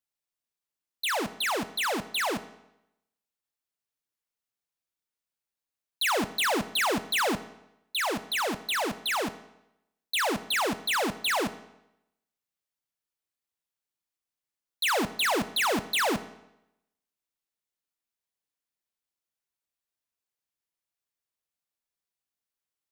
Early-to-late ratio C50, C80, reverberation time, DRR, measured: 15.0 dB, 17.0 dB, 0.85 s, 11.5 dB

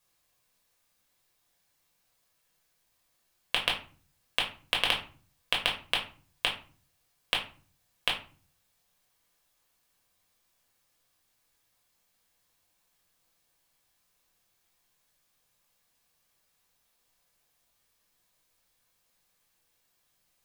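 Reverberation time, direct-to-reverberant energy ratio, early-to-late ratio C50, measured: 0.40 s, −1.5 dB, 9.0 dB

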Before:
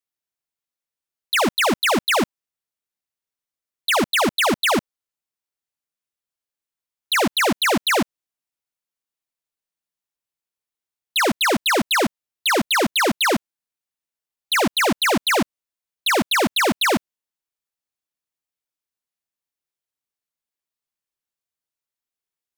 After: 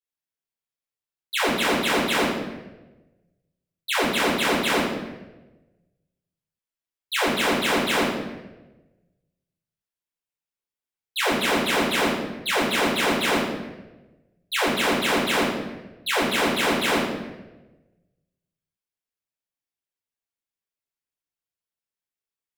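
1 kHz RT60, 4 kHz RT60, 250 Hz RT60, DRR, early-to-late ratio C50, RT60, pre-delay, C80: 0.95 s, 0.80 s, 1.3 s, −8.0 dB, 1.5 dB, 1.1 s, 4 ms, 4.0 dB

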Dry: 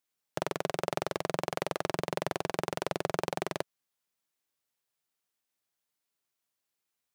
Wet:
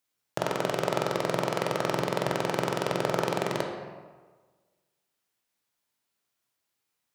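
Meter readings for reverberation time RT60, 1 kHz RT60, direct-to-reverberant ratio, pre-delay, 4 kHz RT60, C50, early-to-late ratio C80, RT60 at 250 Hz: 1.4 s, 1.4 s, 1.0 dB, 13 ms, 0.85 s, 3.5 dB, 6.0 dB, 1.5 s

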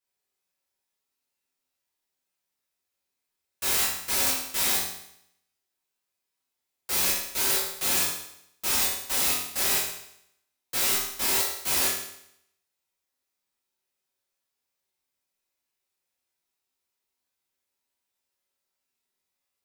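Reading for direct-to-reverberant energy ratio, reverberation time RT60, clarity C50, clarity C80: −9.5 dB, 0.75 s, 2.5 dB, 6.0 dB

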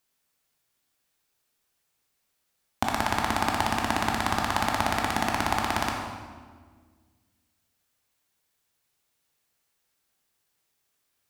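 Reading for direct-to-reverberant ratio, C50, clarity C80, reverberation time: 0.5 dB, 2.5 dB, 4.5 dB, 1.6 s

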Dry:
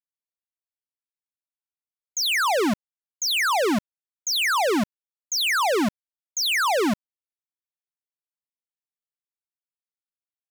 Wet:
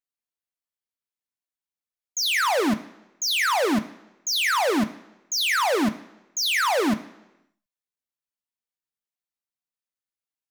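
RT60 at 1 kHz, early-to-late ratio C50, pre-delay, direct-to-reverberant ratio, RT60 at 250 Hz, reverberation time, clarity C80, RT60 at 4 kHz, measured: 1.0 s, 14.5 dB, 3 ms, 7.5 dB, 0.85 s, 1.0 s, 17.0 dB, 0.90 s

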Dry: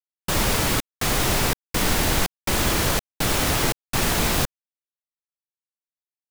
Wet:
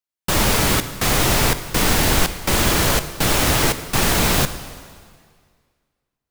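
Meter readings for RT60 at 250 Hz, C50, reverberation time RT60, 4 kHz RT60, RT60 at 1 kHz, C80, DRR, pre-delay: 1.8 s, 12.0 dB, 1.9 s, 1.8 s, 1.9 s, 13.0 dB, 11.0 dB, 7 ms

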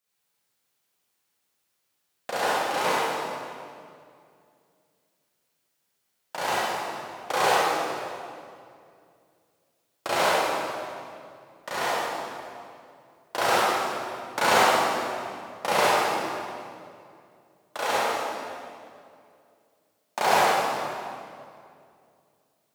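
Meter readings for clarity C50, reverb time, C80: −6.5 dB, 2.4 s, −3.0 dB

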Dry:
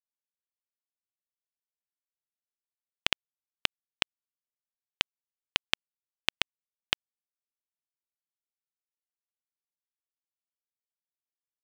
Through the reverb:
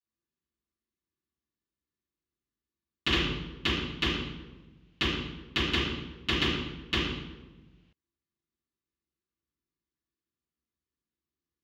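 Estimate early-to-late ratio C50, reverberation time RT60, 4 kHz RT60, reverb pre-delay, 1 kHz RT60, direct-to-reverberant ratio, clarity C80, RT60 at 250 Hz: −0.5 dB, 1.1 s, 0.80 s, 3 ms, 0.95 s, −18.0 dB, 2.5 dB, 1.5 s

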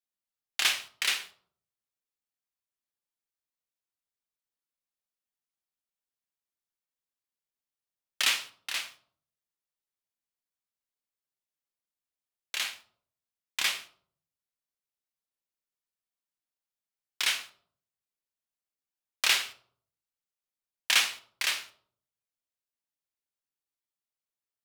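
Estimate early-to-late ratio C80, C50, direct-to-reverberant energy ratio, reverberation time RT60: 18.5 dB, 15.0 dB, 8.5 dB, 0.60 s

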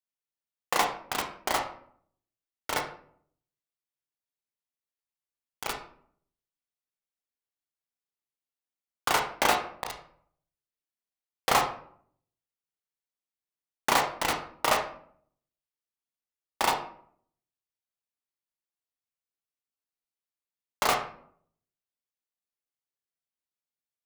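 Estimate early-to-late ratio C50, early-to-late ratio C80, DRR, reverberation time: 7.5 dB, 11.5 dB, 2.5 dB, 0.60 s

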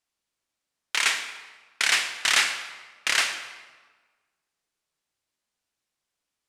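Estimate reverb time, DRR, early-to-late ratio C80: 1.4 s, 6.5 dB, 9.5 dB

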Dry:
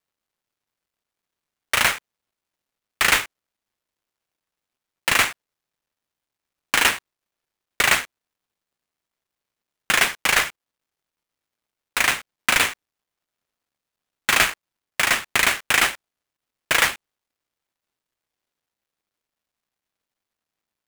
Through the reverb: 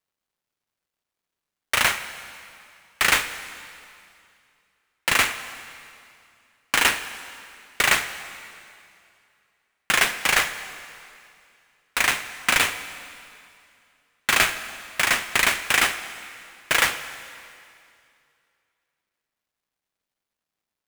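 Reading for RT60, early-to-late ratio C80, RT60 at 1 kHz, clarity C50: 2.5 s, 12.5 dB, 2.5 s, 11.5 dB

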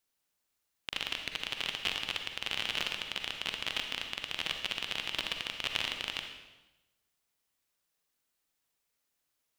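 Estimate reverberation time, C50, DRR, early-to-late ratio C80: 1.0 s, 5.0 dB, 4.5 dB, 8.0 dB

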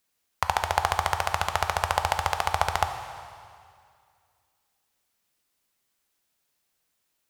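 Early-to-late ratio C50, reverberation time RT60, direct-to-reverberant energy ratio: 8.5 dB, 2.2 s, 7.0 dB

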